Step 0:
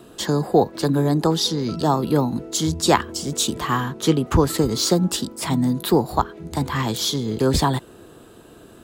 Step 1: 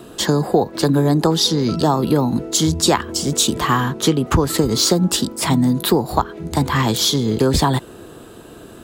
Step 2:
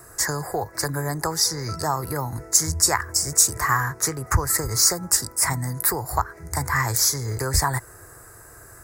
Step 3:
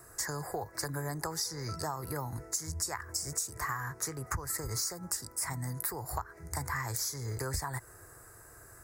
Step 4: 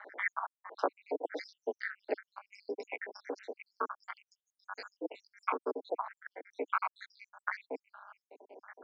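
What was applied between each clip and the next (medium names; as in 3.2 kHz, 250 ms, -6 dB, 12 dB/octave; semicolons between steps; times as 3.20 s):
compression 5:1, threshold -18 dBFS, peak gain reduction 7.5 dB; trim +6.5 dB
FFT filter 110 Hz 0 dB, 220 Hz -22 dB, 360 Hz -13 dB, 2 kHz +4 dB, 3.2 kHz -30 dB, 5 kHz +1 dB, 9.6 kHz +7 dB; trim -1.5 dB
compression 10:1, threshold -23 dBFS, peak gain reduction 12 dB; trim -8 dB
random holes in the spectrogram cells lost 84%; AM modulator 200 Hz, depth 90%; mistuned SSB +130 Hz 210–3300 Hz; trim +15 dB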